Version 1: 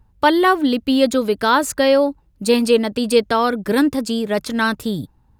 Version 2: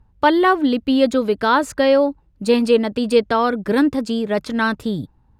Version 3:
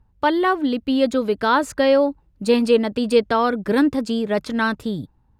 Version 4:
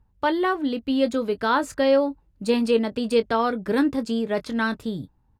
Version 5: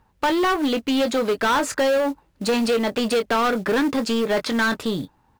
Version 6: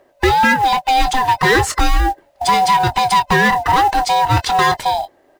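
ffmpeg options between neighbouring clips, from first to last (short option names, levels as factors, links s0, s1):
-af "aemphasis=mode=reproduction:type=50kf"
-af "dynaudnorm=f=240:g=9:m=3.76,volume=0.631"
-filter_complex "[0:a]asplit=2[s0][s1];[s1]adelay=22,volume=0.237[s2];[s0][s2]amix=inputs=2:normalize=0,volume=0.631"
-filter_complex "[0:a]acompressor=threshold=0.1:ratio=6,asplit=2[s0][s1];[s1]highpass=f=720:p=1,volume=12.6,asoftclip=type=tanh:threshold=0.224[s2];[s0][s2]amix=inputs=2:normalize=0,lowpass=f=5100:p=1,volume=0.501,acrusher=bits=6:mode=log:mix=0:aa=0.000001"
-af "afftfilt=real='real(if(lt(b,1008),b+24*(1-2*mod(floor(b/24),2)),b),0)':imag='imag(if(lt(b,1008),b+24*(1-2*mod(floor(b/24),2)),b),0)':win_size=2048:overlap=0.75,volume=2.24"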